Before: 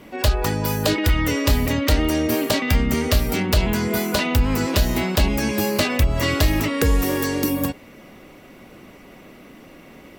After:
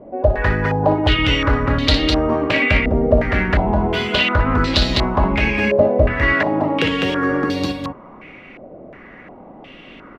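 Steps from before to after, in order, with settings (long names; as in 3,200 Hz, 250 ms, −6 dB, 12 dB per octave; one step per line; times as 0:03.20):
0:06.12–0:07.28: high-pass filter 200 Hz → 80 Hz 24 dB per octave
loudspeakers that aren't time-aligned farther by 20 metres −8 dB, 70 metres −4 dB
low-pass on a step sequencer 2.8 Hz 630–4,000 Hz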